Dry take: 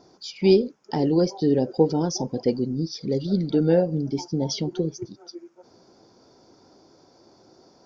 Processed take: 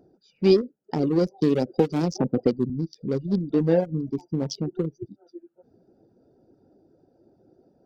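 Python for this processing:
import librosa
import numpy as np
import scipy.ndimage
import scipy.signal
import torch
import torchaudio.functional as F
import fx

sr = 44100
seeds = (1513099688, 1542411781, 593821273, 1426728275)

y = fx.wiener(x, sr, points=41)
y = fx.dereverb_blind(y, sr, rt60_s=0.56)
y = fx.band_squash(y, sr, depth_pct=100, at=(1.41, 2.7))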